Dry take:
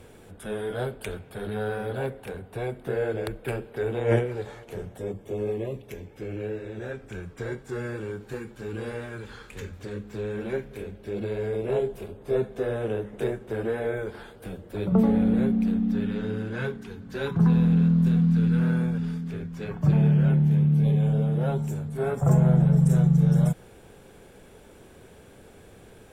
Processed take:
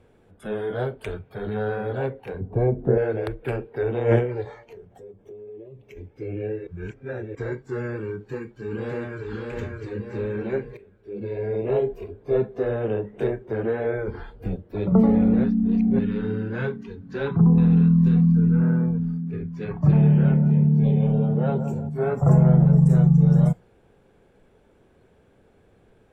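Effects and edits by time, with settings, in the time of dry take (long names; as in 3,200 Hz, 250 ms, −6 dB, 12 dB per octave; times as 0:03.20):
0:02.40–0:02.98: tilt shelving filter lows +9.5 dB
0:04.65–0:05.97: downward compressor 8 to 1, threshold −39 dBFS
0:06.67–0:07.35: reverse
0:08.11–0:09.28: delay throw 600 ms, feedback 60%, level −2.5 dB
0:10.77–0:11.62: fade in, from −13.5 dB
0:14.08–0:14.56: low-shelf EQ 190 Hz +11 dB
0:15.44–0:15.99: reverse
0:16.95–0:17.58: treble cut that deepens with the level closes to 810 Hz, closed at −17 dBFS
0:18.32–0:19.33: parametric band 3,700 Hz −8.5 dB 2.3 octaves
0:19.97–0:21.89: feedback echo with a low-pass in the loop 172 ms, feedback 54%, level −8 dB
whole clip: noise reduction from a noise print of the clip's start 11 dB; low-pass filter 2,000 Hz 6 dB per octave; level +3.5 dB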